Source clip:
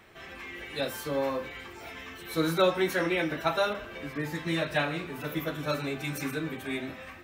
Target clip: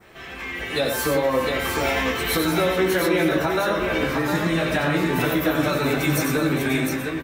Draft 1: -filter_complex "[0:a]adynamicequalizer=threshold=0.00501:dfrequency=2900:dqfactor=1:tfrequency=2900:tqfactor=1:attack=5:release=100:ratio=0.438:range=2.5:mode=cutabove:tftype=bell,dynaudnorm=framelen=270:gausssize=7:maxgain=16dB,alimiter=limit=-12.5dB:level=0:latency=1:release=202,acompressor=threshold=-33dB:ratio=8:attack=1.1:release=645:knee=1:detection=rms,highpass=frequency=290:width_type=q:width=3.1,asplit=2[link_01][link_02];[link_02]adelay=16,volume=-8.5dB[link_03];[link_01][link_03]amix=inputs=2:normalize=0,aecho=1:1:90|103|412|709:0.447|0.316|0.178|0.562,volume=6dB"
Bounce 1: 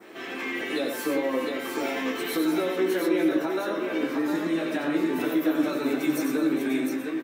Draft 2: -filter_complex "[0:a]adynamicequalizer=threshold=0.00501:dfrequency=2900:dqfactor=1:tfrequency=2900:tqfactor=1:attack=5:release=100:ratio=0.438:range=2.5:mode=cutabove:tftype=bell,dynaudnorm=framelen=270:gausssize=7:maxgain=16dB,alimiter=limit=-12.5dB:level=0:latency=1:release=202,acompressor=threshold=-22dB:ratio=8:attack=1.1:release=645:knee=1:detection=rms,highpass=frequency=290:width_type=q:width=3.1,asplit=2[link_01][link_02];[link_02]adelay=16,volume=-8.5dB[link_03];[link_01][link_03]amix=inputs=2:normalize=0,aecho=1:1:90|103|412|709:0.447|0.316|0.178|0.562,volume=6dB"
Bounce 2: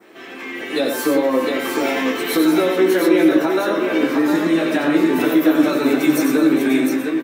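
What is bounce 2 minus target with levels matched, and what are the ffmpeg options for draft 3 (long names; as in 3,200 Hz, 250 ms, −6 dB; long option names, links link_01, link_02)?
250 Hz band +3.5 dB
-filter_complex "[0:a]adynamicequalizer=threshold=0.00501:dfrequency=2900:dqfactor=1:tfrequency=2900:tqfactor=1:attack=5:release=100:ratio=0.438:range=2.5:mode=cutabove:tftype=bell,dynaudnorm=framelen=270:gausssize=7:maxgain=16dB,alimiter=limit=-12.5dB:level=0:latency=1:release=202,acompressor=threshold=-22dB:ratio=8:attack=1.1:release=645:knee=1:detection=rms,asplit=2[link_01][link_02];[link_02]adelay=16,volume=-8.5dB[link_03];[link_01][link_03]amix=inputs=2:normalize=0,aecho=1:1:90|103|412|709:0.447|0.316|0.178|0.562,volume=6dB"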